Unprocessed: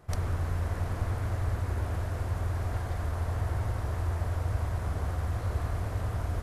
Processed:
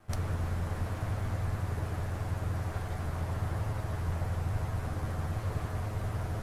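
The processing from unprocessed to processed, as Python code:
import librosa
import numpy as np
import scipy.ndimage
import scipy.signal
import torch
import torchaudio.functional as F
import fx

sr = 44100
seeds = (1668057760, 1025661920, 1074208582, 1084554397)

y = fx.lower_of_two(x, sr, delay_ms=9.4)
y = y * 10.0 ** (-1.0 / 20.0)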